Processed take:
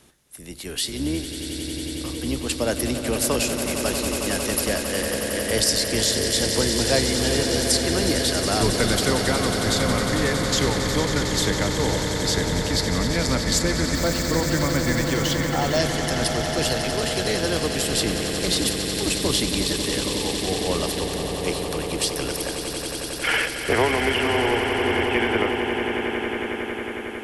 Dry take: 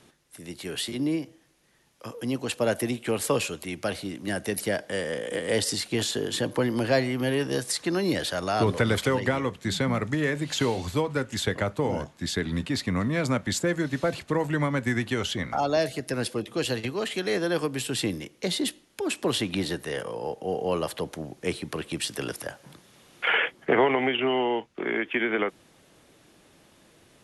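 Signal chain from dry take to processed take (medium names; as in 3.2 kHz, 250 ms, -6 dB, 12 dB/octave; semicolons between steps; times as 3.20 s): octave divider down 2 oct, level -4 dB; treble shelf 7.5 kHz +10 dB; echo with a slow build-up 91 ms, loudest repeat 8, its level -10.5 dB; 13.95–15.79 s: careless resampling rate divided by 2×, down filtered, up hold; dynamic bell 5.2 kHz, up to +7 dB, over -44 dBFS, Q 1.8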